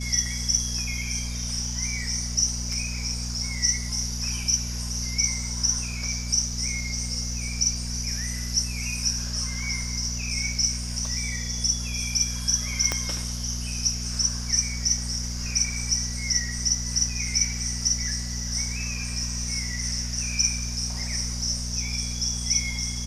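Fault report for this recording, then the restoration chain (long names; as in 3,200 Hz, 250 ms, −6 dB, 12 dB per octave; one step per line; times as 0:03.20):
mains hum 60 Hz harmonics 4 −32 dBFS
0:12.92: click −9 dBFS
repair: click removal
hum removal 60 Hz, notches 4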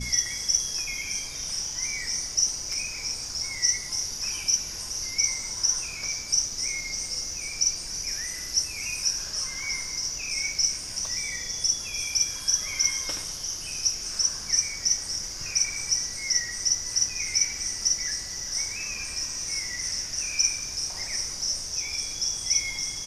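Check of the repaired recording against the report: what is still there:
0:12.92: click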